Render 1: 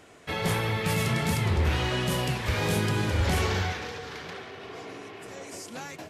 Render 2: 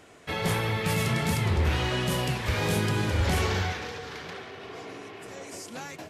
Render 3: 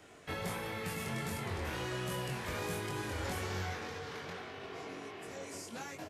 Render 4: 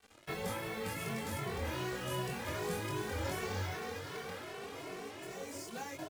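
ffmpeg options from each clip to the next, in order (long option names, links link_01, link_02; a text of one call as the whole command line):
ffmpeg -i in.wav -af anull out.wav
ffmpeg -i in.wav -filter_complex "[0:a]acrossover=split=200|890|1900|6000[link_01][link_02][link_03][link_04][link_05];[link_01]acompressor=threshold=-39dB:ratio=4[link_06];[link_02]acompressor=threshold=-38dB:ratio=4[link_07];[link_03]acompressor=threshold=-40dB:ratio=4[link_08];[link_04]acompressor=threshold=-48dB:ratio=4[link_09];[link_05]acompressor=threshold=-44dB:ratio=4[link_10];[link_06][link_07][link_08][link_09][link_10]amix=inputs=5:normalize=0,asplit=2[link_11][link_12];[link_12]adelay=22,volume=-3dB[link_13];[link_11][link_13]amix=inputs=2:normalize=0,volume=-5.5dB" out.wav
ffmpeg -i in.wav -filter_complex "[0:a]equalizer=frequency=470:width=0.82:gain=2.5,acrusher=bits=7:mix=0:aa=0.5,asplit=2[link_01][link_02];[link_02]adelay=2.2,afreqshift=2.6[link_03];[link_01][link_03]amix=inputs=2:normalize=1,volume=2dB" out.wav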